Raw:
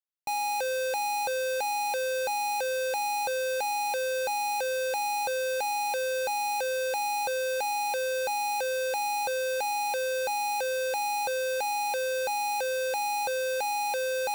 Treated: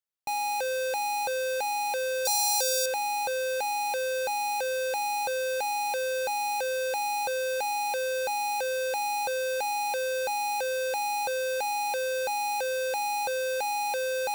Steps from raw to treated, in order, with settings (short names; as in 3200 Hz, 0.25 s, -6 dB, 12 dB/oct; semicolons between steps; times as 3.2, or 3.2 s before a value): 2.25–2.86 resonant high shelf 3500 Hz +11.5 dB, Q 1.5